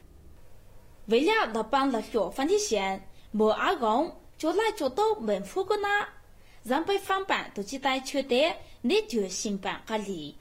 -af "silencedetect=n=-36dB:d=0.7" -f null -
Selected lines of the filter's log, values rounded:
silence_start: 0.00
silence_end: 1.09 | silence_duration: 1.09